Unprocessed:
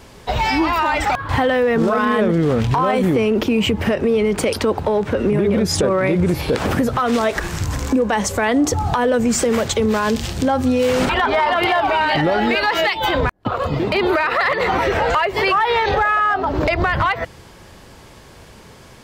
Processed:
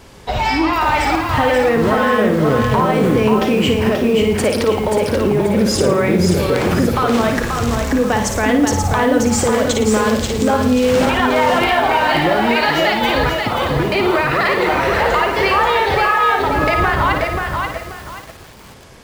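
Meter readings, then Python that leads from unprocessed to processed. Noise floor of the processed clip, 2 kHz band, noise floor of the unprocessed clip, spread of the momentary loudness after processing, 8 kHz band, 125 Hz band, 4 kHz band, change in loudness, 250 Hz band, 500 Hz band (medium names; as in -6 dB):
-38 dBFS, +2.5 dB, -43 dBFS, 4 LU, +2.5 dB, +2.5 dB, +2.5 dB, +2.5 dB, +2.5 dB, +2.5 dB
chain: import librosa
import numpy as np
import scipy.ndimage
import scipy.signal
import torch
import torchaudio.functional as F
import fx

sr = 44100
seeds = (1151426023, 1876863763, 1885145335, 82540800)

y = fx.room_flutter(x, sr, wall_m=9.5, rt60_s=0.51)
y = fx.echo_crushed(y, sr, ms=533, feedback_pct=35, bits=6, wet_db=-4.0)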